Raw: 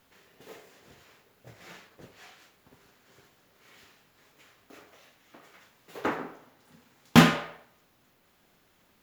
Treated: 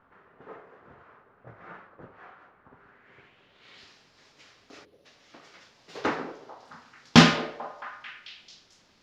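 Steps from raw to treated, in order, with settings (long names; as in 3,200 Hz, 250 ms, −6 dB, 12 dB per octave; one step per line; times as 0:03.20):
low-pass filter sweep 1,300 Hz → 5,200 Hz, 0:02.71–0:03.93
gain on a spectral selection 0:04.85–0:05.06, 590–9,100 Hz −22 dB
echo through a band-pass that steps 221 ms, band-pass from 470 Hz, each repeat 0.7 octaves, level −11 dB
level +1.5 dB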